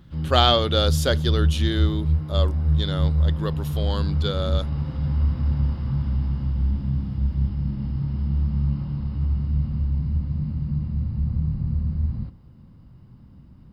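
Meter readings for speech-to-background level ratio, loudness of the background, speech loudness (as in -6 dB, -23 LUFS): -0.5 dB, -25.0 LUFS, -25.5 LUFS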